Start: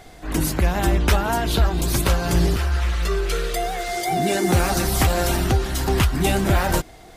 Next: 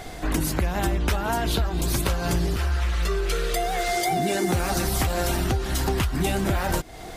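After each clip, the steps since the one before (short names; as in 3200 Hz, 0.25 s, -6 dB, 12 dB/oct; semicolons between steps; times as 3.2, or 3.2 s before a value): compressor 5:1, threshold -29 dBFS, peak gain reduction 15 dB; gain +7 dB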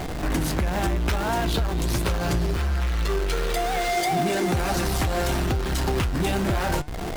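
high shelf 8800 Hz -7.5 dB; in parallel at -4 dB: Schmitt trigger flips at -37 dBFS; on the sum: flange 0.71 Hz, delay 5.5 ms, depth 4.5 ms, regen +88%; gain +1.5 dB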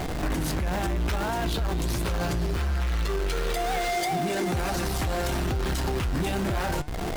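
limiter -20.5 dBFS, peak gain reduction 8 dB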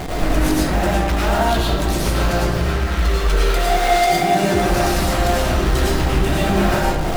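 digital reverb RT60 0.92 s, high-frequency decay 0.65×, pre-delay 65 ms, DRR -6 dB; gain +3.5 dB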